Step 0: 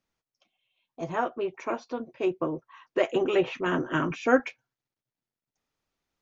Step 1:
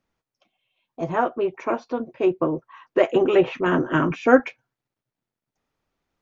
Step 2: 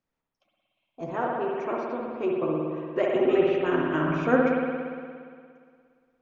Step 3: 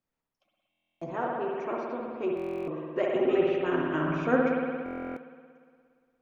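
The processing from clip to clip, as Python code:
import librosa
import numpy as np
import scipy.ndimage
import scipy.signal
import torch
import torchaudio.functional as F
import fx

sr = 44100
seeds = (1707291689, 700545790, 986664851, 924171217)

y1 = fx.high_shelf(x, sr, hz=3000.0, db=-10.0)
y1 = y1 * librosa.db_to_amplitude(7.0)
y2 = fx.rev_spring(y1, sr, rt60_s=2.1, pass_ms=(58,), chirp_ms=50, drr_db=-2.0)
y2 = y2 * librosa.db_to_amplitude(-8.5)
y3 = fx.buffer_glitch(y2, sr, at_s=(0.69, 2.35, 4.84), block=1024, repeats=13)
y3 = y3 * librosa.db_to_amplitude(-3.0)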